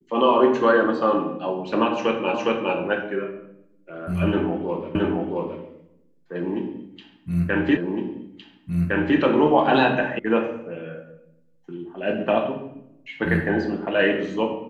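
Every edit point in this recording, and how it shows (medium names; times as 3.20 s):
2.34 s: repeat of the last 0.41 s
4.95 s: repeat of the last 0.67 s
7.77 s: repeat of the last 1.41 s
10.19 s: sound stops dead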